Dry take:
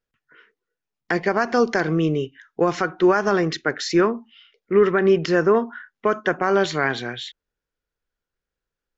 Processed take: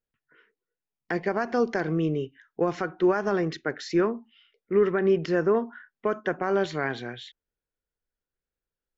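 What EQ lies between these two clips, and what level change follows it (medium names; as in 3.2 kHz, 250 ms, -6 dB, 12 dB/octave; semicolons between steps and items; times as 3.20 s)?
peaking EQ 1.2 kHz -3 dB 0.77 oct; treble shelf 3.2 kHz -8.5 dB; -5.0 dB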